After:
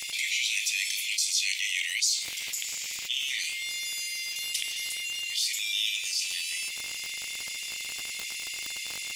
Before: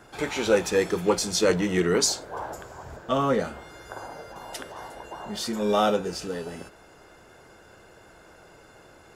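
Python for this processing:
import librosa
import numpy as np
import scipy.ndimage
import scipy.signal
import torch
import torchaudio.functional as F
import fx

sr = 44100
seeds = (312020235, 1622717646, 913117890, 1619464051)

y = scipy.signal.sosfilt(scipy.signal.butter(16, 2100.0, 'highpass', fs=sr, output='sos'), x)
y = fx.dmg_crackle(y, sr, seeds[0], per_s=57.0, level_db=-49.0)
y = fx.env_flatten(y, sr, amount_pct=70)
y = y * 10.0 ** (-3.5 / 20.0)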